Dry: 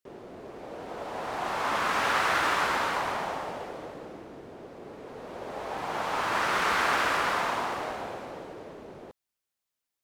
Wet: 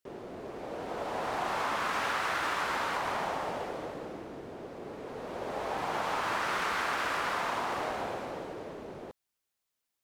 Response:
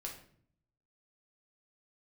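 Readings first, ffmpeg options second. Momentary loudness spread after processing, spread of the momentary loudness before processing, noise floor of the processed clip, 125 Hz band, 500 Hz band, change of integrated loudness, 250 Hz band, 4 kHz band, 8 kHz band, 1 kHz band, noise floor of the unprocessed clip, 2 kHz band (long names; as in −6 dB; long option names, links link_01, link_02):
13 LU, 20 LU, −85 dBFS, −1.5 dB, −2.0 dB, −5.0 dB, −1.5 dB, −4.5 dB, −4.5 dB, −3.5 dB, below −85 dBFS, −4.5 dB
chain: -af "acompressor=threshold=-30dB:ratio=6,volume=1.5dB"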